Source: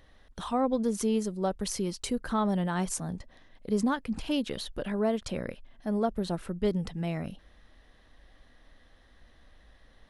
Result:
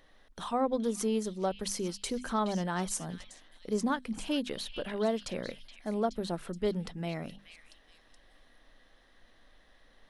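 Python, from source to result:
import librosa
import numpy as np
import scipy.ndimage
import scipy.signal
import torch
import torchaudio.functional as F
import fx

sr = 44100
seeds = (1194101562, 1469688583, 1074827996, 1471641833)

p1 = fx.peak_eq(x, sr, hz=67.0, db=-11.5, octaves=1.9)
p2 = fx.hum_notches(p1, sr, base_hz=50, count=5)
p3 = p2 + fx.echo_stepped(p2, sr, ms=423, hz=2900.0, octaves=0.7, feedback_pct=70, wet_db=-7.0, dry=0)
y = p3 * 10.0 ** (-1.0 / 20.0)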